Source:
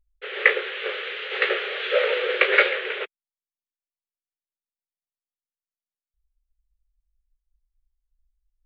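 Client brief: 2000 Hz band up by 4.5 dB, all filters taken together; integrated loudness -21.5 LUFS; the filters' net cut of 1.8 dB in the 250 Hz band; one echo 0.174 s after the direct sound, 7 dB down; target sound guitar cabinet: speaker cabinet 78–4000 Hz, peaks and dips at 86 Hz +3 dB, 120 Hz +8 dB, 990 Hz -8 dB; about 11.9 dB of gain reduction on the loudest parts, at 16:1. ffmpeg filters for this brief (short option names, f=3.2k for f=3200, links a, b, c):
-af "equalizer=f=250:t=o:g=-4.5,equalizer=f=2k:t=o:g=5.5,acompressor=threshold=-18dB:ratio=16,highpass=78,equalizer=f=86:t=q:w=4:g=3,equalizer=f=120:t=q:w=4:g=8,equalizer=f=990:t=q:w=4:g=-8,lowpass=f=4k:w=0.5412,lowpass=f=4k:w=1.3066,aecho=1:1:174:0.447,volume=2dB"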